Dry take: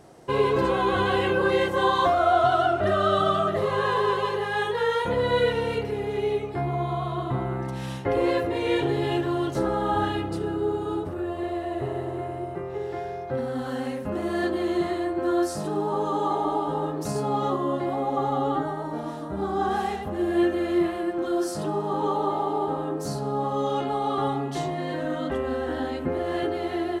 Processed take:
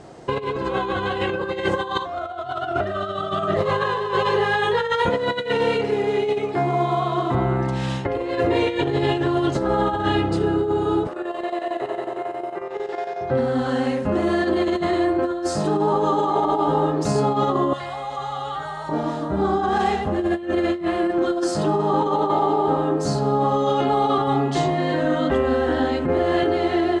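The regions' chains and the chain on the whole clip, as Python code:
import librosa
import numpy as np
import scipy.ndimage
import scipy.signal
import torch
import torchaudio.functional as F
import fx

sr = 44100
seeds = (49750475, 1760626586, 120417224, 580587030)

y = fx.chain(x, sr, fx.highpass(hz=180.0, slope=12),
    fx.quant_float(bits=4), at=(5.1, 7.35))
y = fx.chain(y, sr, fx.highpass(hz=460.0, slope=12),
    fx.chopper(hz=11.0, depth_pct=60, duty_pct=70), at=(11.07, 13.21))
y = fx.chain(y, sr, fx.tone_stack(knobs='10-0-10'),
    fx.env_flatten(amount_pct=50), at=(17.73, 18.89))
y = scipy.signal.sosfilt(scipy.signal.butter(4, 7800.0, 'lowpass', fs=sr, output='sos'), y)
y = fx.notch(y, sr, hz=5700.0, q=17.0)
y = fx.over_compress(y, sr, threshold_db=-26.0, ratio=-0.5)
y = F.gain(torch.from_numpy(y), 6.0).numpy()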